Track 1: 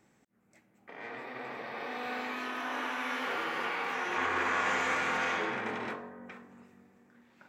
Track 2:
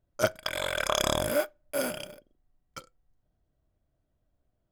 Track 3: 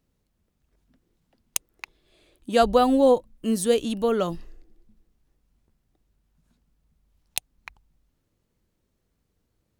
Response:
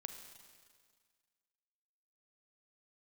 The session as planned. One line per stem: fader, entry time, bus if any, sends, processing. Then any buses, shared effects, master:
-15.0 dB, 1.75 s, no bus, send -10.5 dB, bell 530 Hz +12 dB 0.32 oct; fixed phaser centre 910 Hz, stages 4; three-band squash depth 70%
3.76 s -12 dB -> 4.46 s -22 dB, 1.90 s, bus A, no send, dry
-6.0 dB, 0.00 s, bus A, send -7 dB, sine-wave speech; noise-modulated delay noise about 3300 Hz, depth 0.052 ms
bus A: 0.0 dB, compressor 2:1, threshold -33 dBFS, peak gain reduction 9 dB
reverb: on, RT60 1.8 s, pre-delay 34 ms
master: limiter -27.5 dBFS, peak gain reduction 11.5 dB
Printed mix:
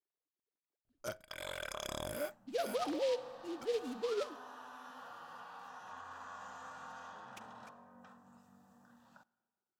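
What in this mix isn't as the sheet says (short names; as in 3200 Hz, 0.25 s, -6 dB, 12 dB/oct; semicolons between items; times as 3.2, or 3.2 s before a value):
stem 1: missing bell 530 Hz +12 dB 0.32 oct; stem 2: entry 1.90 s -> 0.85 s; stem 3 -6.0 dB -> -14.5 dB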